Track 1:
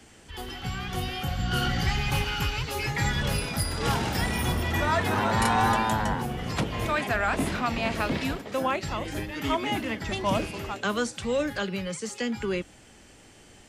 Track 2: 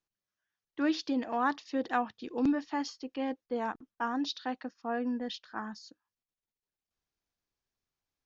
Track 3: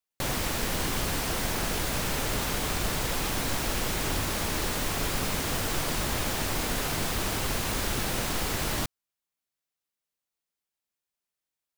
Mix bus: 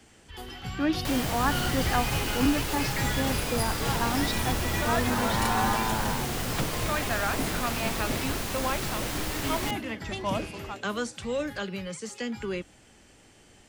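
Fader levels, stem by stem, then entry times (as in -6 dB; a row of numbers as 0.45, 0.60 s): -3.5, +2.5, -3.0 dB; 0.00, 0.00, 0.85 s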